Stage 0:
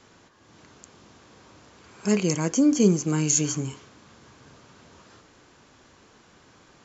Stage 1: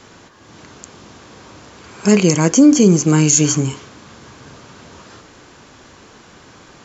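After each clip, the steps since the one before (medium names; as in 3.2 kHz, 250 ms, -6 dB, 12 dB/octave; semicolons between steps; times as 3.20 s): loudness maximiser +12.5 dB; trim -1 dB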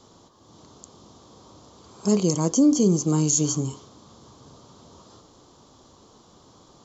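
high-order bell 2 kHz -15 dB 1.1 oct; trim -8.5 dB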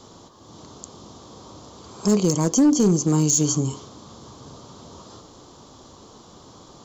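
in parallel at +1 dB: compression 16:1, threshold -28 dBFS, peak gain reduction 15 dB; on the sum: hard clipper -11.5 dBFS, distortion -22 dB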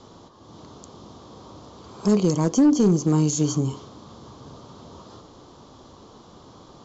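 distance through air 110 m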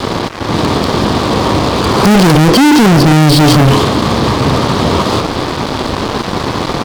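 resampled via 11.025 kHz; fuzz box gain 42 dB, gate -50 dBFS; trim +8 dB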